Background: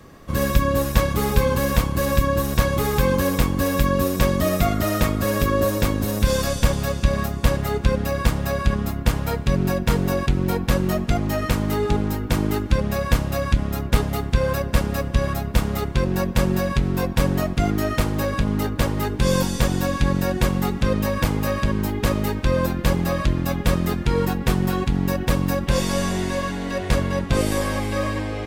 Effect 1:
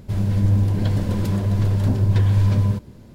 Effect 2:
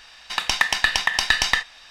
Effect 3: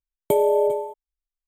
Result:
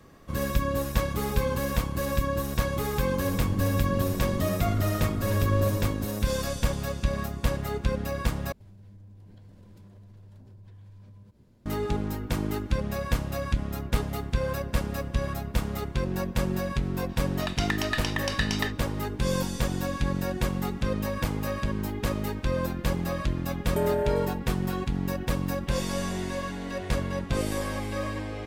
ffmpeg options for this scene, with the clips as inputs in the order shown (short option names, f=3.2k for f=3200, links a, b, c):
-filter_complex "[1:a]asplit=2[a][b];[0:a]volume=-7.5dB[c];[b]acompressor=threshold=-32dB:ratio=6:attack=3.2:release=140:knee=1:detection=peak[d];[3:a]asoftclip=type=tanh:threshold=-16dB[e];[c]asplit=2[f][g];[f]atrim=end=8.524[h];[d]atrim=end=3.14,asetpts=PTS-STARTPTS,volume=-16dB[i];[g]atrim=start=11.656[j];[a]atrim=end=3.14,asetpts=PTS-STARTPTS,volume=-11dB,afade=t=in:d=0.004:c=hsin,afade=t=out:st=3.136:d=0.004:c=hsin,adelay=3150[k];[2:a]atrim=end=1.9,asetpts=PTS-STARTPTS,volume=-11dB,afade=t=in:d=0.004:c=hsin,afade=t=out:st=1.896:d=0.004:c=hsin,adelay=17090[l];[e]atrim=end=1.47,asetpts=PTS-STARTPTS,volume=-5.5dB,afade=t=in:d=0.004:c=hsin,afade=t=out:st=1.466:d=0.004:c=hsin,adelay=23460[m];[h][i]acrossfade=d=0.004:c1=hsin:c2=hsin[n];[n][j]acrossfade=d=0.004:c1=hsin:c2=hsin[o];[o][k][l][m]amix=inputs=4:normalize=0"